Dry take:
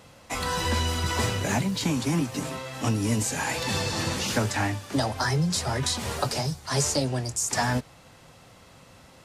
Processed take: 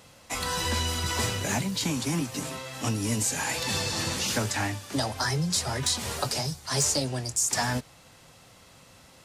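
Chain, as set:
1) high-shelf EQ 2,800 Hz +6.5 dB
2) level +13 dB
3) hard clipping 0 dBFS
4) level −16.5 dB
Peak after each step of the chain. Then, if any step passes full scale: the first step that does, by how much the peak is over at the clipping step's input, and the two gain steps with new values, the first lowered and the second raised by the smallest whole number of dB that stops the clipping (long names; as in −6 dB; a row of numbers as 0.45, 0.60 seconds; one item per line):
−7.5, +5.5, 0.0, −16.5 dBFS
step 2, 5.5 dB
step 2 +7 dB, step 4 −10.5 dB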